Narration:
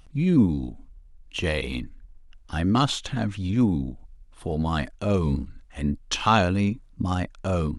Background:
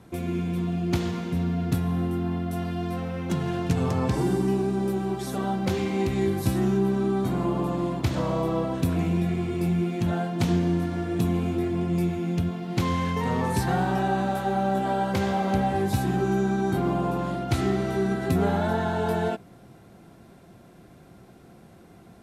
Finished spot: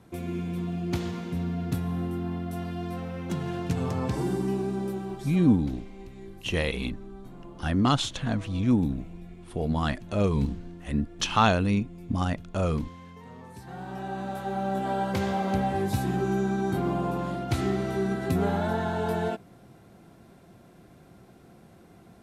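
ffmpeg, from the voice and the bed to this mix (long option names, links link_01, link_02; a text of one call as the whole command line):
ffmpeg -i stem1.wav -i stem2.wav -filter_complex "[0:a]adelay=5100,volume=-1.5dB[link_01];[1:a]volume=13.5dB,afade=type=out:start_time=4.74:duration=0.99:silence=0.158489,afade=type=in:start_time=13.62:duration=1.37:silence=0.133352[link_02];[link_01][link_02]amix=inputs=2:normalize=0" out.wav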